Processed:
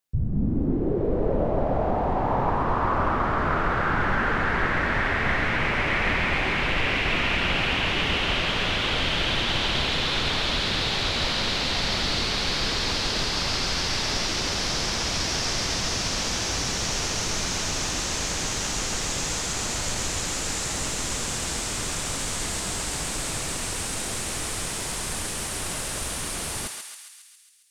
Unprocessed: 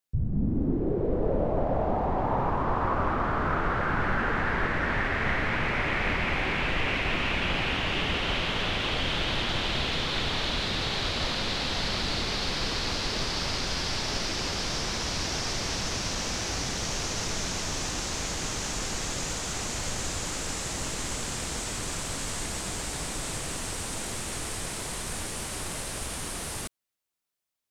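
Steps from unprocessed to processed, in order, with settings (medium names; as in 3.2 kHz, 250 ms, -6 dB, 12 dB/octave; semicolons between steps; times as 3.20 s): thinning echo 136 ms, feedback 66%, high-pass 1.1 kHz, level -3.5 dB; trim +2.5 dB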